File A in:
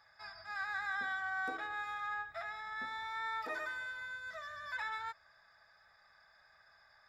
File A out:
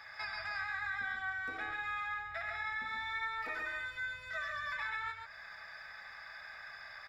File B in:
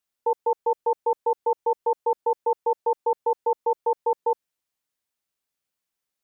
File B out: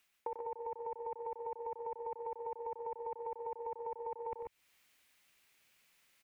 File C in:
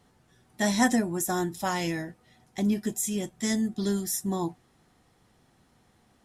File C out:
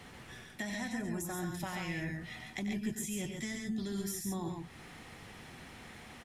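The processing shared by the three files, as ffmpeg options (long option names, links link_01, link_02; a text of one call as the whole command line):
ffmpeg -i in.wav -filter_complex "[0:a]areverse,acompressor=threshold=-35dB:ratio=12,areverse,equalizer=frequency=2300:width=1.3:gain=10.5,acrossover=split=130[link_01][link_02];[link_02]acompressor=threshold=-48dB:ratio=10[link_03];[link_01][link_03]amix=inputs=2:normalize=0,aecho=1:1:94|126|139:0.316|0.335|0.531,volume=9.5dB" out.wav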